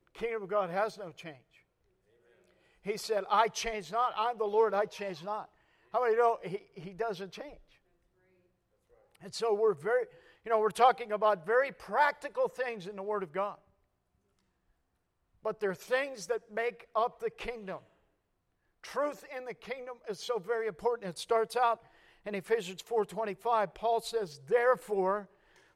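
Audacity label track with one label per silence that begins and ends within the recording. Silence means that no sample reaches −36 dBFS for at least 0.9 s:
1.290000	2.870000	silence
7.410000	9.260000	silence
13.520000	15.450000	silence
17.760000	18.850000	silence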